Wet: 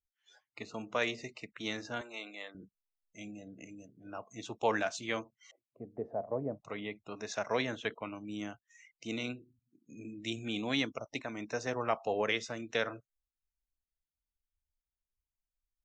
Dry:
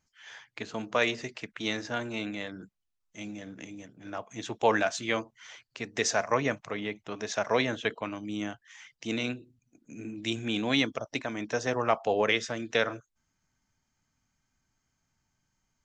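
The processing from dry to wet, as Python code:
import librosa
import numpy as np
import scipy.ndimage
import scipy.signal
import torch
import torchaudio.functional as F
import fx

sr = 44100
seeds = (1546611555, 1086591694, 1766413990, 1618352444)

y = fx.highpass(x, sr, hz=520.0, slope=12, at=(2.01, 2.55))
y = fx.noise_reduce_blind(y, sr, reduce_db=24)
y = fx.cheby1_lowpass(y, sr, hz=680.0, order=3, at=(5.51, 6.65))
y = F.gain(torch.from_numpy(y), -6.0).numpy()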